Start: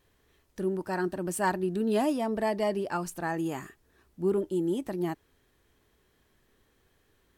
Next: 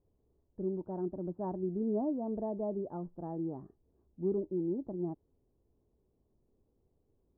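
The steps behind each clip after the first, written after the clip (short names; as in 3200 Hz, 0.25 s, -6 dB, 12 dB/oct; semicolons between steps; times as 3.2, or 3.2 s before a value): Bessel low-pass 520 Hz, order 6; gain -4 dB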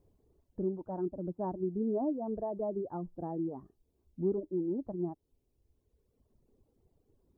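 reverb removal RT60 1.5 s; in parallel at +2 dB: compressor, threshold -45 dBFS, peak gain reduction 16 dB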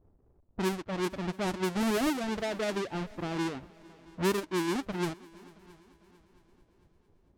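half-waves squared off; low-pass opened by the level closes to 740 Hz, open at -26 dBFS; multi-head echo 0.224 s, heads second and third, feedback 44%, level -24 dB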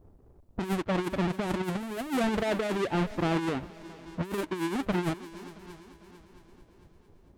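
dynamic EQ 5400 Hz, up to -6 dB, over -53 dBFS, Q 1.4; negative-ratio compressor -33 dBFS, ratio -0.5; gain +5 dB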